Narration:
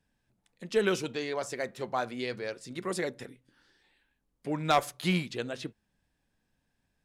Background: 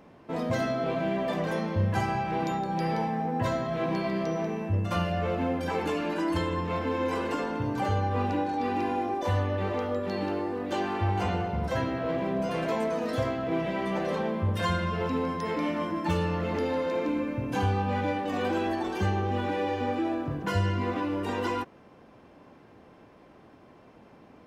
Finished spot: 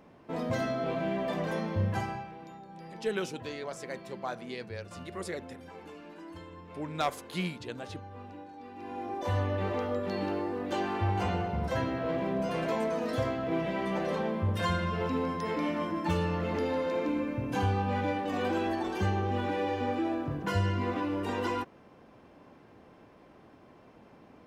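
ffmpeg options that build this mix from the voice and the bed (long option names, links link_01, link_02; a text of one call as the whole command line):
ffmpeg -i stem1.wav -i stem2.wav -filter_complex "[0:a]adelay=2300,volume=-5.5dB[link_01];[1:a]volume=13dB,afade=type=out:start_time=1.87:duration=0.48:silence=0.177828,afade=type=in:start_time=8.76:duration=0.67:silence=0.158489[link_02];[link_01][link_02]amix=inputs=2:normalize=0" out.wav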